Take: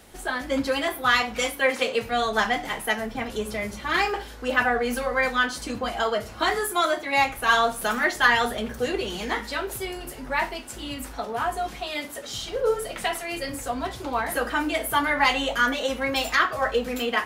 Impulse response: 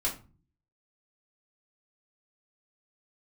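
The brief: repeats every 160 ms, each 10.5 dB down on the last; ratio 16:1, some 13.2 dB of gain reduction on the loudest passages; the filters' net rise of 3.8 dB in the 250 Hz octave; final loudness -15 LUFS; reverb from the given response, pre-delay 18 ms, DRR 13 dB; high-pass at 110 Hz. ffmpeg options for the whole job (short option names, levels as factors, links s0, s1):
-filter_complex "[0:a]highpass=110,equalizer=f=250:t=o:g=4.5,acompressor=threshold=0.0398:ratio=16,aecho=1:1:160|320|480:0.299|0.0896|0.0269,asplit=2[s0][s1];[1:a]atrim=start_sample=2205,adelay=18[s2];[s1][s2]afir=irnorm=-1:irlink=0,volume=0.112[s3];[s0][s3]amix=inputs=2:normalize=0,volume=6.68"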